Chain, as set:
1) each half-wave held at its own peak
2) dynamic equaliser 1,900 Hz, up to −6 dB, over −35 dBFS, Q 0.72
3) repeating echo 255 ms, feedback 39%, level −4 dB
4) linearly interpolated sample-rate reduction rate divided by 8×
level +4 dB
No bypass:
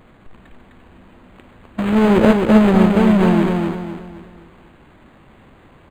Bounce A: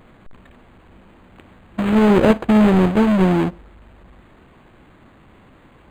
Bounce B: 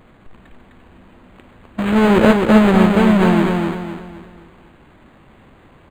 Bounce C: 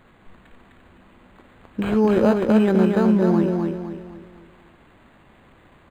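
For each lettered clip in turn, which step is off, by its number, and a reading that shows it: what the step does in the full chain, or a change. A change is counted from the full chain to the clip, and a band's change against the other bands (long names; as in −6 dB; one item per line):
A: 3, change in momentary loudness spread −6 LU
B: 2, 2 kHz band +3.0 dB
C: 1, distortion level −5 dB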